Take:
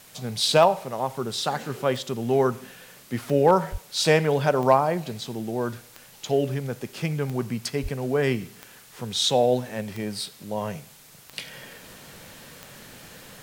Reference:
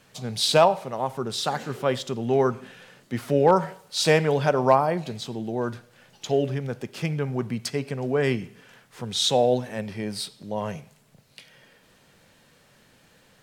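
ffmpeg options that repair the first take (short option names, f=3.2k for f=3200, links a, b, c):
-filter_complex "[0:a]adeclick=t=4,asplit=3[a][b][c];[a]afade=t=out:st=3.71:d=0.02[d];[b]highpass=f=140:w=0.5412,highpass=f=140:w=1.3066,afade=t=in:st=3.71:d=0.02,afade=t=out:st=3.83:d=0.02[e];[c]afade=t=in:st=3.83:d=0.02[f];[d][e][f]amix=inputs=3:normalize=0,asplit=3[g][h][i];[g]afade=t=out:st=7.82:d=0.02[j];[h]highpass=f=140:w=0.5412,highpass=f=140:w=1.3066,afade=t=in:st=7.82:d=0.02,afade=t=out:st=7.94:d=0.02[k];[i]afade=t=in:st=7.94:d=0.02[l];[j][k][l]amix=inputs=3:normalize=0,afwtdn=0.0032,asetnsamples=n=441:p=0,asendcmd='11.33 volume volume -11.5dB',volume=0dB"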